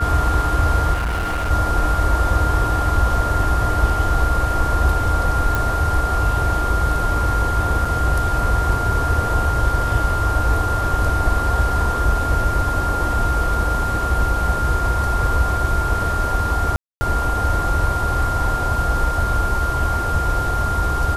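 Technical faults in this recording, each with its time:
tone 1400 Hz -22 dBFS
0.93–1.51 clipped -18.5 dBFS
5.55 pop
7.85 gap 4 ms
16.76–17.01 gap 0.25 s

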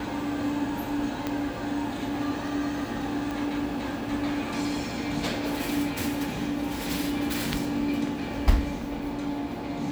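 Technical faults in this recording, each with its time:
1.27 pop -14 dBFS
3.31 pop

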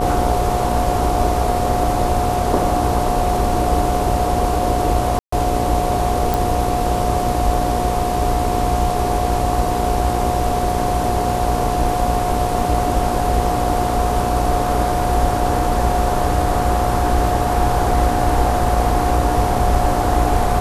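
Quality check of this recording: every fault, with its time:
buzz 60 Hz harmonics 19 -24 dBFS
tone 720 Hz -21 dBFS
5.19–5.32 gap 0.134 s
6.34 pop

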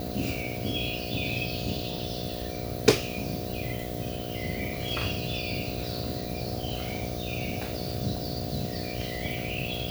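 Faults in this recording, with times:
buzz 60 Hz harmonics 12 -36 dBFS

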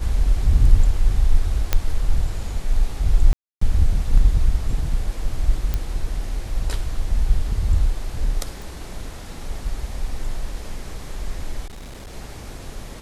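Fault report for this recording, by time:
1.73 pop -4 dBFS
3.33–3.61 gap 0.284 s
5.74 pop -10 dBFS
8.62 pop
11.66–12.14 clipped -33 dBFS

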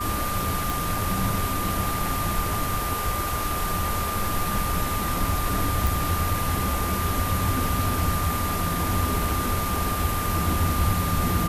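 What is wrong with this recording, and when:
tone 1200 Hz -29 dBFS
0.7 pop
5.87 pop

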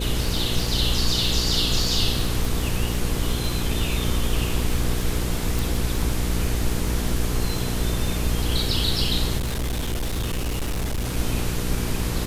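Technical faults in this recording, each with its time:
crackle 44/s -27 dBFS
hum 60 Hz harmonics 8 -27 dBFS
2.45 pop
5.59 pop
9.37–11.17 clipped -22 dBFS

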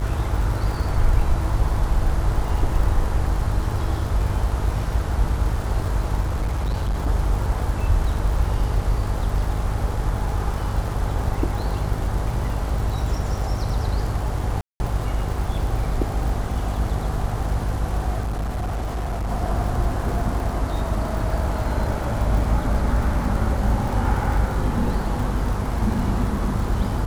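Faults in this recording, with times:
buzz 50 Hz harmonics 27 -26 dBFS
crackle 130/s -30 dBFS
6.21–7.08 clipped -19 dBFS
14.61–14.8 gap 0.19 s
18.2–19.31 clipped -22 dBFS

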